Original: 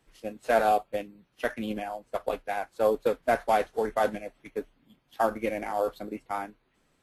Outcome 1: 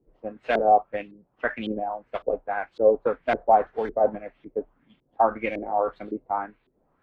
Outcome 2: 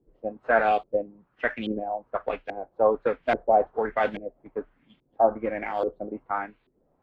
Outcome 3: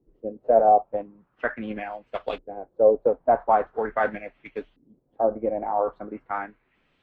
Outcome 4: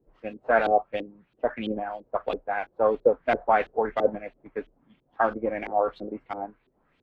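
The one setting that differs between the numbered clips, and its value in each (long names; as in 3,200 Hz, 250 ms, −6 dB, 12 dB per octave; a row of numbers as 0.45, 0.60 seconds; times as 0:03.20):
auto-filter low-pass, speed: 1.8, 1.2, 0.42, 3 Hertz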